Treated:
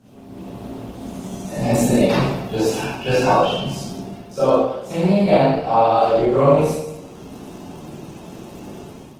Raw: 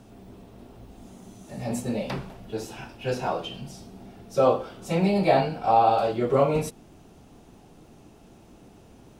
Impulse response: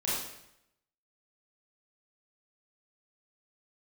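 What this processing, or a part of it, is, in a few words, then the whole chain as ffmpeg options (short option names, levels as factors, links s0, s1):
far-field microphone of a smart speaker: -filter_complex "[1:a]atrim=start_sample=2205[s0];[0:a][s0]afir=irnorm=-1:irlink=0,highpass=f=82:p=1,dynaudnorm=f=160:g=5:m=3.35,volume=0.794" -ar 48000 -c:a libopus -b:a 16k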